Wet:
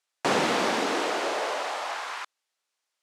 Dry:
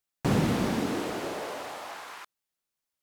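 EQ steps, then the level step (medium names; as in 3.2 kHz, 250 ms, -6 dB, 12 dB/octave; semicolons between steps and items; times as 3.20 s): band-pass 520–7600 Hz; +8.5 dB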